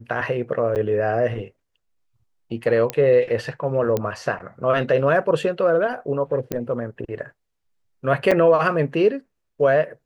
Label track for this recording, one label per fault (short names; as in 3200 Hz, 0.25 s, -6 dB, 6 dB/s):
0.750000	0.760000	gap 8.9 ms
2.900000	2.900000	pop -8 dBFS
3.970000	3.970000	pop -10 dBFS
6.520000	6.520000	pop -11 dBFS
8.310000	8.320000	gap 5.6 ms